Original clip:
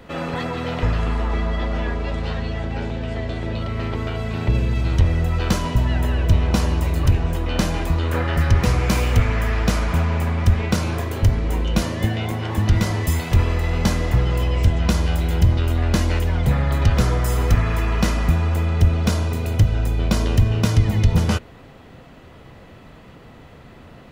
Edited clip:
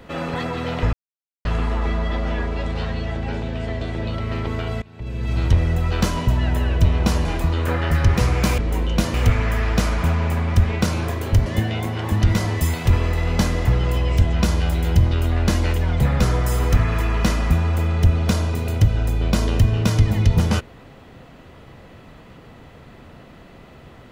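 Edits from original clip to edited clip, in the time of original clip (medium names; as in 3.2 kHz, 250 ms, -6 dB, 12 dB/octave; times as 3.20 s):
0.93 s: insert silence 0.52 s
4.30–4.84 s: fade in quadratic, from -22 dB
6.73–7.71 s: delete
11.36–11.92 s: move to 9.04 s
16.66–16.98 s: delete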